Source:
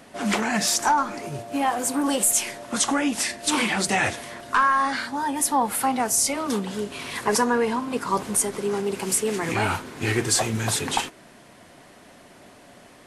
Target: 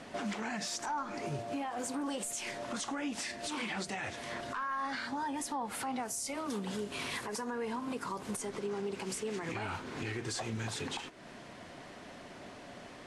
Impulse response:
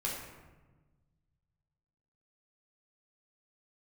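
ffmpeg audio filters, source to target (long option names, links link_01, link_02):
-af "asetnsamples=nb_out_samples=441:pad=0,asendcmd='6.03 lowpass f 11000;8.37 lowpass f 6300',lowpass=6900,acompressor=threshold=-36dB:ratio=2.5,alimiter=level_in=4.5dB:limit=-24dB:level=0:latency=1:release=106,volume=-4.5dB"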